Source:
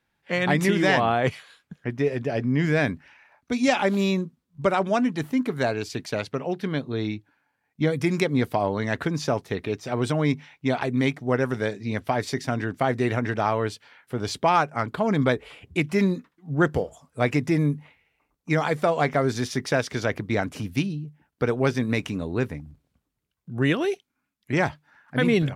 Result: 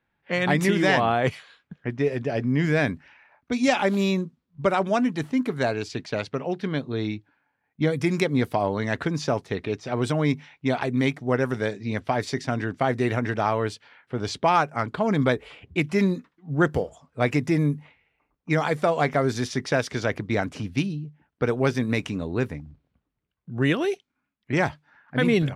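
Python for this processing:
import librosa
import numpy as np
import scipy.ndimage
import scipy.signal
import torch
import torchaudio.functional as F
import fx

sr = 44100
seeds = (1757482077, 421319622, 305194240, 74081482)

y = fx.quant_float(x, sr, bits=8)
y = fx.env_lowpass(y, sr, base_hz=2700.0, full_db=-20.0)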